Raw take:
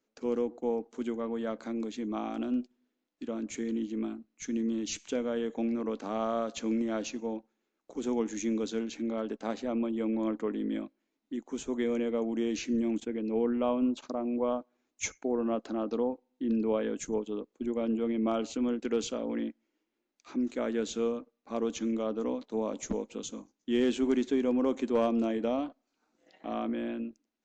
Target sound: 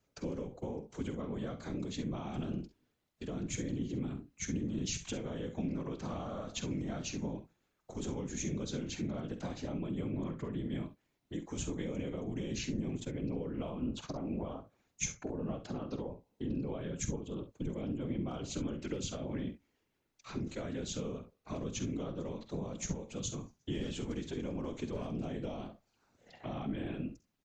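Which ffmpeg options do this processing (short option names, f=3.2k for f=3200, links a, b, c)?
-filter_complex "[0:a]lowshelf=f=190:t=q:w=3:g=11.5,acompressor=threshold=-36dB:ratio=6,afftfilt=real='hypot(re,im)*cos(2*PI*random(0))':imag='hypot(re,im)*sin(2*PI*random(1))':win_size=512:overlap=0.75,acrossover=split=300|3000[a][b][c];[b]acompressor=threshold=-57dB:ratio=2[d];[a][d][c]amix=inputs=3:normalize=0,asplit=2[e][f];[f]aecho=0:1:48|66:0.251|0.2[g];[e][g]amix=inputs=2:normalize=0,volume=9.5dB"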